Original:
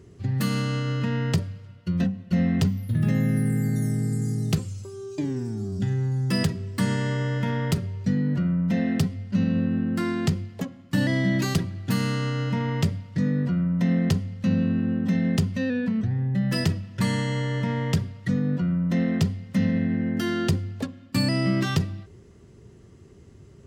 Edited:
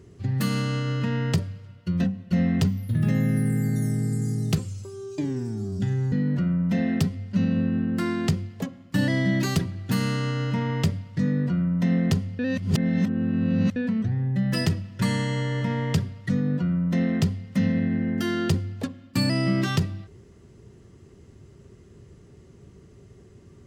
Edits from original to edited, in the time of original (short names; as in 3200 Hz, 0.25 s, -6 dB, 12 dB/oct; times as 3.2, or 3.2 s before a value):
6.12–8.11 cut
14.38–15.75 reverse